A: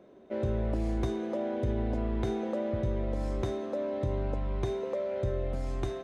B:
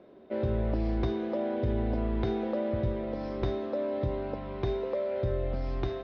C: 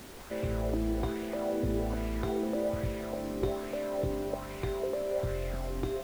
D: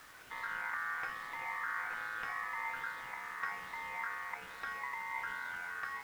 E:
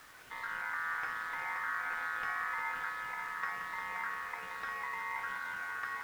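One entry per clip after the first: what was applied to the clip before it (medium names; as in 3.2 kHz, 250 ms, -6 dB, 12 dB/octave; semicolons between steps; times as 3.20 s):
steep low-pass 5.4 kHz 72 dB/octave; de-hum 48.61 Hz, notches 4; trim +1.5 dB
added noise pink -45 dBFS; sweeping bell 1.2 Hz 270–2400 Hz +8 dB; trim -4 dB
ring modulator 1.5 kHz; trim -5.5 dB
multi-head delay 175 ms, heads all three, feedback 43%, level -11 dB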